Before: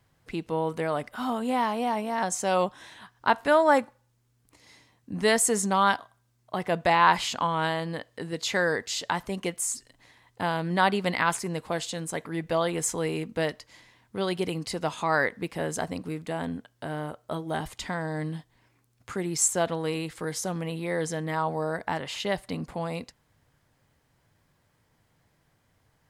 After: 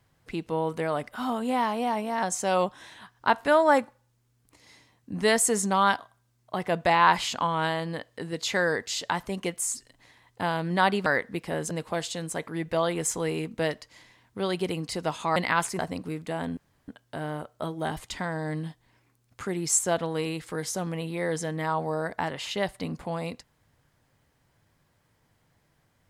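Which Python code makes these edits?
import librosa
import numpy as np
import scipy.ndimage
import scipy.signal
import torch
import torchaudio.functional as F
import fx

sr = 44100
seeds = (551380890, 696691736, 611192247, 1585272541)

y = fx.edit(x, sr, fx.swap(start_s=11.06, length_s=0.43, other_s=15.14, other_length_s=0.65),
    fx.insert_room_tone(at_s=16.57, length_s=0.31), tone=tone)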